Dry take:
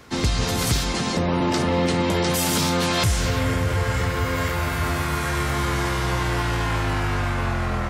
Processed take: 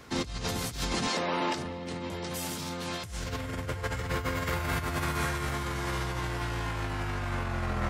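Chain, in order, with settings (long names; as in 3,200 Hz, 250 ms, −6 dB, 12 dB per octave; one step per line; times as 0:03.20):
0:01.07–0:01.55: meter weighting curve A
compressor whose output falls as the input rises −25 dBFS, ratio −0.5
level −6.5 dB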